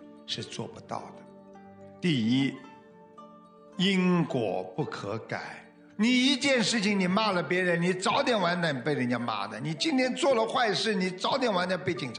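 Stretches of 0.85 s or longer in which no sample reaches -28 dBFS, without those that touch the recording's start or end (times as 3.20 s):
0.97–2.04 s
2.49–3.79 s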